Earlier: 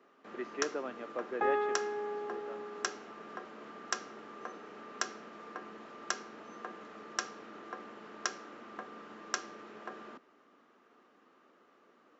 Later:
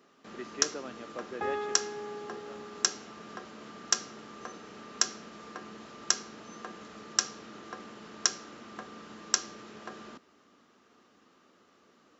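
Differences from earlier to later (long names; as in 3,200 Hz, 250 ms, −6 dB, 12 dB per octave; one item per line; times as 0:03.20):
speech −3.5 dB
second sound −3.5 dB
master: remove three-way crossover with the lows and the highs turned down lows −13 dB, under 240 Hz, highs −13 dB, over 2,600 Hz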